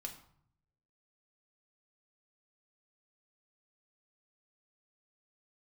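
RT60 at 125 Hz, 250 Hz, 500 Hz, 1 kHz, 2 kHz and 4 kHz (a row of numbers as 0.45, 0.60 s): 1.1, 0.85, 0.60, 0.65, 0.50, 0.40 s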